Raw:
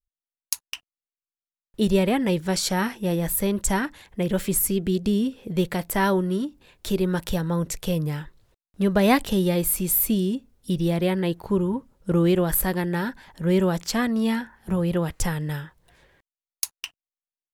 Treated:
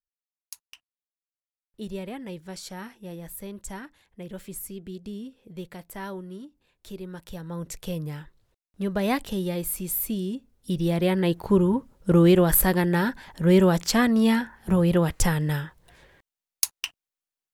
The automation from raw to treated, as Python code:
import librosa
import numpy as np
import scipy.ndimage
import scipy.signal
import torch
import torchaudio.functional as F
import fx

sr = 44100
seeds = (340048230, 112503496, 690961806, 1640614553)

y = fx.gain(x, sr, db=fx.line((7.24, -14.5), (7.74, -6.5), (10.16, -6.5), (11.47, 3.0)))